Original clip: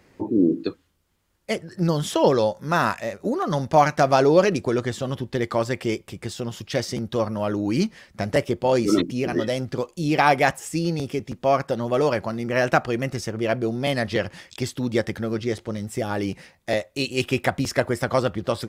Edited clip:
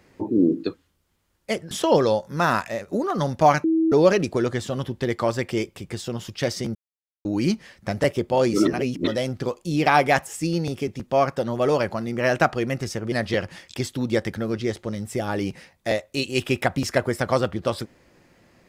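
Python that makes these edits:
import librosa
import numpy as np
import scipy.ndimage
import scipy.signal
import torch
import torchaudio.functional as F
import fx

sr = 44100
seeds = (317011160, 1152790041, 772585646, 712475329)

y = fx.edit(x, sr, fx.cut(start_s=1.71, length_s=0.32),
    fx.bleep(start_s=3.96, length_s=0.28, hz=323.0, db=-16.5),
    fx.silence(start_s=7.07, length_s=0.5),
    fx.reverse_span(start_s=8.99, length_s=0.4),
    fx.cut(start_s=13.44, length_s=0.5), tone=tone)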